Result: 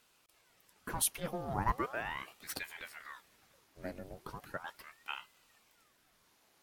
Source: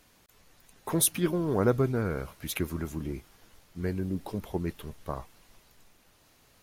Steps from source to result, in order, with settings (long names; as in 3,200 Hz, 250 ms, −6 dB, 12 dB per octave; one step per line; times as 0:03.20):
low shelf with overshoot 340 Hz −11.5 dB, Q 1.5
ring modulator whose carrier an LFO sweeps 1,100 Hz, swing 85%, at 0.38 Hz
level −4 dB